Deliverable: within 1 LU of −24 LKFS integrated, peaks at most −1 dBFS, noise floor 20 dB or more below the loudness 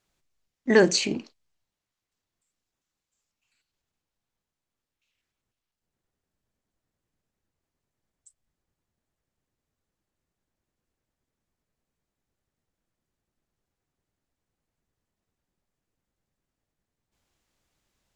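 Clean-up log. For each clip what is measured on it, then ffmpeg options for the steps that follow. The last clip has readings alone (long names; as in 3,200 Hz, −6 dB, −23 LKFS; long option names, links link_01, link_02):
integrated loudness −22.0 LKFS; sample peak −6.5 dBFS; target loudness −24.0 LKFS
→ -af "volume=-2dB"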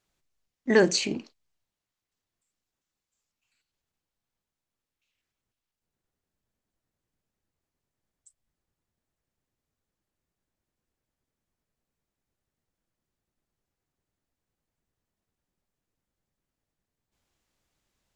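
integrated loudness −24.0 LKFS; sample peak −8.5 dBFS; background noise floor −89 dBFS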